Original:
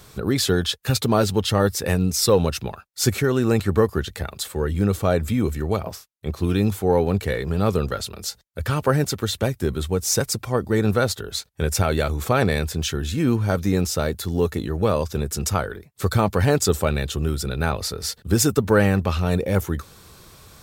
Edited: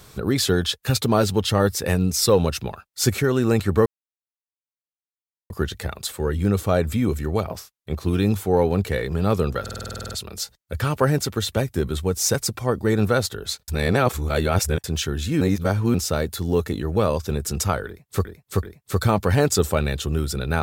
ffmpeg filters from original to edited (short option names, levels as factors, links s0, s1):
-filter_complex "[0:a]asplit=18[s0][s1][s2][s3][s4][s5][s6][s7][s8][s9][s10][s11][s12][s13][s14][s15][s16][s17];[s0]atrim=end=3.86,asetpts=PTS-STARTPTS,afade=t=out:st=3.856:d=0.004:c=hsin,apad=pad_dur=1.64[s18];[s1]atrim=start=3.86:end=8.022,asetpts=PTS-STARTPTS,afade=t=in:d=0.004:c=hsin[s19];[s2]atrim=start=7.968:end=8.022[s20];[s3]atrim=start=7.968:end=8.022[s21];[s4]atrim=start=7.968:end=8.022[s22];[s5]atrim=start=7.968:end=8.022[s23];[s6]atrim=start=7.968:end=8.022[s24];[s7]atrim=start=7.968:end=8.022[s25];[s8]atrim=start=7.968:end=8.022[s26];[s9]atrim=start=7.968:end=8.022[s27];[s10]atrim=start=7.968:end=8.022[s28];[s11]atrim=start=7.968:end=11.542[s29];[s12]atrim=start=11.538:end=12.702,asetpts=PTS-STARTPTS,areverse[s30];[s13]atrim=start=12.698:end=13.272[s31];[s14]atrim=start=13.268:end=13.802,asetpts=PTS-STARTPTS,areverse[s32];[s15]atrim=start=13.798:end=16.112[s33];[s16]atrim=start=15.728:end=16.112[s34];[s17]atrim=start=15.728[s35];[s18][s19]concat=n=2:v=0:a=1[s36];[s36][s20]acrossfade=d=0.004:c1=hsin:c2=hsin[s37];[s37][s21]acrossfade=d=0.004:c1=hsin:c2=hsin[s38];[s38][s22]acrossfade=d=0.004:c1=hsin:c2=hsin[s39];[s39][s23]acrossfade=d=0.004:c1=hsin:c2=hsin[s40];[s40][s24]acrossfade=d=0.004:c1=hsin:c2=hsin[s41];[s41][s25]acrossfade=d=0.004:c1=hsin:c2=hsin[s42];[s42][s26]acrossfade=d=0.004:c1=hsin:c2=hsin[s43];[s43][s27]acrossfade=d=0.004:c1=hsin:c2=hsin[s44];[s44][s28]acrossfade=d=0.004:c1=hsin:c2=hsin[s45];[s45][s29]acrossfade=d=0.004:c1=hsin:c2=hsin[s46];[s46][s30]acrossfade=d=0.004:c1=hsin:c2=hsin[s47];[s47][s31]acrossfade=d=0.004:c1=hsin:c2=hsin[s48];[s48][s32]acrossfade=d=0.004:c1=hsin:c2=hsin[s49];[s49][s33]acrossfade=d=0.004:c1=hsin:c2=hsin[s50];[s50][s34]acrossfade=d=0.004:c1=hsin:c2=hsin[s51];[s51][s35]acrossfade=d=0.004:c1=hsin:c2=hsin"